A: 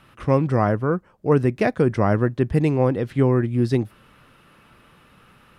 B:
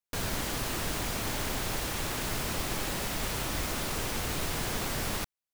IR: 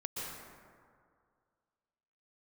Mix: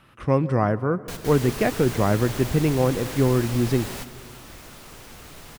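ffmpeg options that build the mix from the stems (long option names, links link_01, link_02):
-filter_complex "[0:a]volume=-2.5dB,asplit=3[link_01][link_02][link_03];[link_02]volume=-18dB[link_04];[1:a]adelay=950,volume=-1dB[link_05];[link_03]apad=whole_len=285978[link_06];[link_05][link_06]sidechaingate=range=-10dB:threshold=-48dB:ratio=16:detection=peak[link_07];[2:a]atrim=start_sample=2205[link_08];[link_04][link_08]afir=irnorm=-1:irlink=0[link_09];[link_01][link_07][link_09]amix=inputs=3:normalize=0"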